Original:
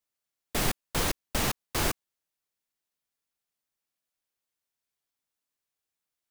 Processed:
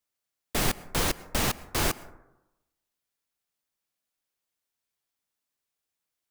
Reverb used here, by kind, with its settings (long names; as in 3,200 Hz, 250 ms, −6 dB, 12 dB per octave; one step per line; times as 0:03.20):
dense smooth reverb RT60 0.95 s, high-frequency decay 0.3×, pre-delay 95 ms, DRR 18.5 dB
level +1.5 dB